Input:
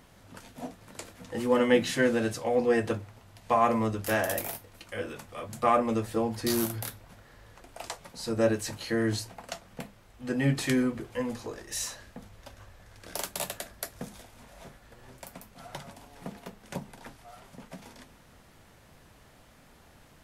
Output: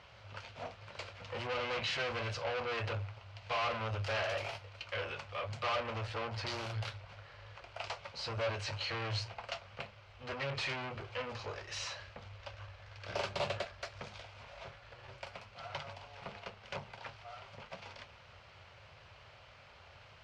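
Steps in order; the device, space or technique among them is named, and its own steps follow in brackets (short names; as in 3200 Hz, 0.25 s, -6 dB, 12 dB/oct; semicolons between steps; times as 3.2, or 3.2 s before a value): scooped metal amplifier (tube stage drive 36 dB, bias 0.55; speaker cabinet 87–3900 Hz, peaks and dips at 100 Hz +7 dB, 180 Hz -5 dB, 380 Hz +7 dB, 560 Hz +7 dB, 1800 Hz -7 dB, 3600 Hz -7 dB; passive tone stack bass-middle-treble 10-0-10); 13.09–13.65 bell 230 Hz +12 dB 3 oct; gain +13.5 dB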